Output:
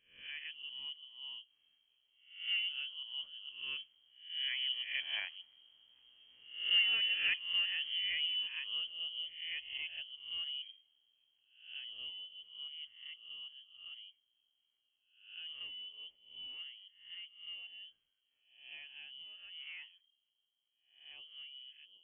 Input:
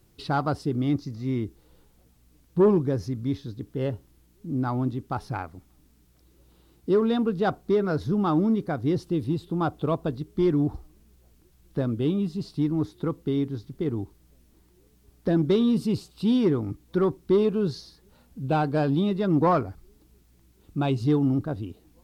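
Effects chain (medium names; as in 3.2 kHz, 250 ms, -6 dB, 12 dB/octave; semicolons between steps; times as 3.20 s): reverse spectral sustain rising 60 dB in 0.53 s; Doppler pass-by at 5.97 s, 12 m/s, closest 13 m; frequency inversion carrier 3.2 kHz; trim -7.5 dB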